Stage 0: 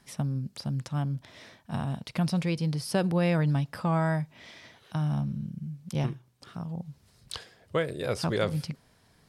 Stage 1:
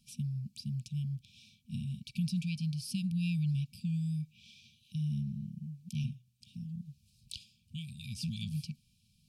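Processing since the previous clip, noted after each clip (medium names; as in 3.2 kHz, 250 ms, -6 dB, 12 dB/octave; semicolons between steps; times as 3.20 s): FFT band-reject 240–2300 Hz; trim -5.5 dB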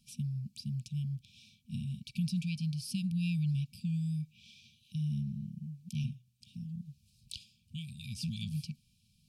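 no audible change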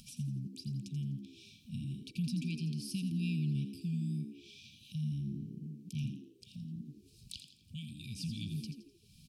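upward compressor, threshold -44 dBFS; on a send: frequency-shifting echo 84 ms, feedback 39%, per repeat +64 Hz, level -9.5 dB; on the sum: trim -2.5 dB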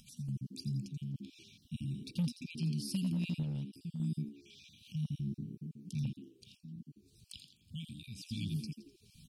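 random holes in the spectrogram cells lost 21%; overload inside the chain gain 30 dB; random-step tremolo 3.5 Hz, depth 55%; trim +2.5 dB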